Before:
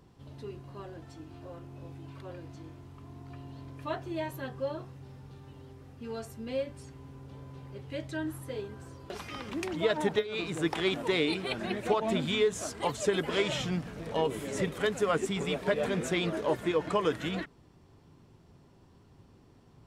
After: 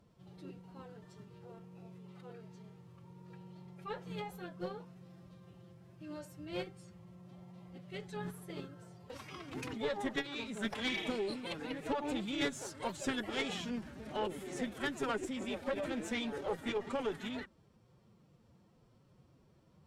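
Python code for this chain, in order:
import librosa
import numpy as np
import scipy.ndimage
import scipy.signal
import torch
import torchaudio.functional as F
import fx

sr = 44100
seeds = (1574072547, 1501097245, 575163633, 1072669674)

y = fx.pitch_keep_formants(x, sr, semitones=5.0)
y = fx.spec_repair(y, sr, seeds[0], start_s=10.92, length_s=0.43, low_hz=1600.0, high_hz=4000.0, source='both')
y = fx.tube_stage(y, sr, drive_db=21.0, bias=0.55)
y = F.gain(torch.from_numpy(y), -4.5).numpy()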